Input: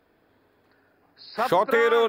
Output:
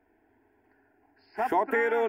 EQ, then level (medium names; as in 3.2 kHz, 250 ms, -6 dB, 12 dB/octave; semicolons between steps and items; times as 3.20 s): treble shelf 2.9 kHz -10 dB; static phaser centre 800 Hz, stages 8; 0.0 dB